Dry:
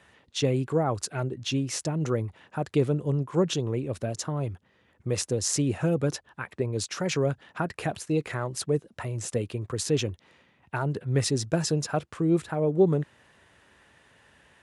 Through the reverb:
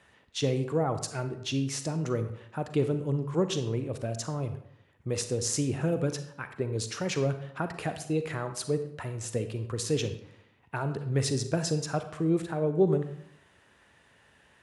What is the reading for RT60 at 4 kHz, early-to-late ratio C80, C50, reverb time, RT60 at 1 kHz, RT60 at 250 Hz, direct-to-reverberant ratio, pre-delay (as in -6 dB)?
0.50 s, 12.5 dB, 10.0 dB, 0.75 s, 0.75 s, 0.80 s, 9.0 dB, 36 ms